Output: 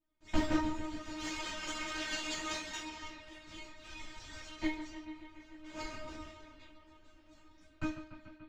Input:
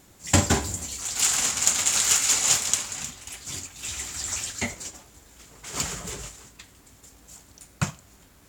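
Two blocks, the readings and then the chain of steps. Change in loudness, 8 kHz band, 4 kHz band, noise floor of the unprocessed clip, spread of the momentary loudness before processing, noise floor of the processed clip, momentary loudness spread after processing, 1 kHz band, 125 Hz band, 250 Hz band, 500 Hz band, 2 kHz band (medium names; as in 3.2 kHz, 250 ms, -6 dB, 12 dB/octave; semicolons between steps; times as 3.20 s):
-16.0 dB, -27.0 dB, -14.0 dB, -55 dBFS, 17 LU, -62 dBFS, 16 LU, -8.5 dB, -17.5 dB, -3.5 dB, -8.0 dB, -9.5 dB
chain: cycle switcher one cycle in 3, inverted; gate with hold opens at -42 dBFS; bass shelf 290 Hz +7 dB; feedback comb 310 Hz, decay 0.37 s, harmonics all, mix 100%; modulation noise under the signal 15 dB; bucket-brigade echo 145 ms, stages 4096, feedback 76%, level -12 dB; one-sided clip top -27 dBFS; distance through air 240 m; three-phase chorus; trim +10.5 dB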